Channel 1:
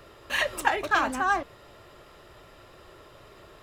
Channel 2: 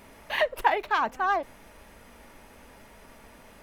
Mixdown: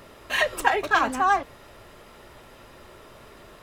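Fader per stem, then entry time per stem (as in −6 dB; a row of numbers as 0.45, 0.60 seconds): +1.5, −2.0 decibels; 0.00, 0.00 seconds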